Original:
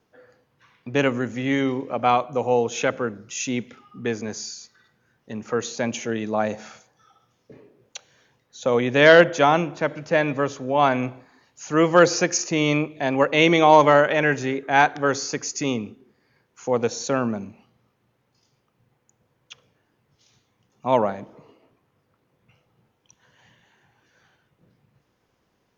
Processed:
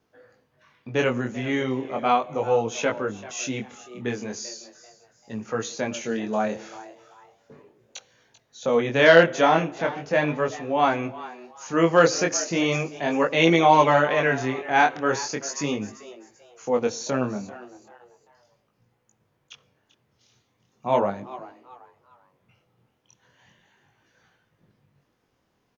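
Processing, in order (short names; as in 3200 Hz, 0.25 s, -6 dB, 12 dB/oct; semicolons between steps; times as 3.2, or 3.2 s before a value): frequency-shifting echo 0.39 s, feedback 32%, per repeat +120 Hz, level -17 dB; chorus 0.37 Hz, delay 18 ms, depth 6.6 ms; gain +1 dB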